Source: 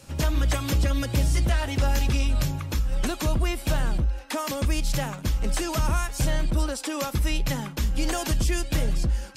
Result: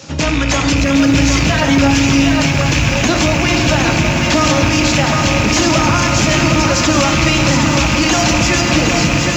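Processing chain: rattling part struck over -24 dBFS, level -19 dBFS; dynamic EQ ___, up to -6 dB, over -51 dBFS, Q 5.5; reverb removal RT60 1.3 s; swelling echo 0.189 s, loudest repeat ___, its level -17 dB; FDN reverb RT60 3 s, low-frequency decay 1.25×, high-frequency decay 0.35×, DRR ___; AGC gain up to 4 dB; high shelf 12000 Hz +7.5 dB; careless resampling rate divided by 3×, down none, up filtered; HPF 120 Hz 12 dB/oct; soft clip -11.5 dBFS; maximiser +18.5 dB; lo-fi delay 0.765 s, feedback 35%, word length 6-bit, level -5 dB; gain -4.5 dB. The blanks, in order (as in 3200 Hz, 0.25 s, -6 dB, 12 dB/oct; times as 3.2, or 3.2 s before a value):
440 Hz, 8, 3.5 dB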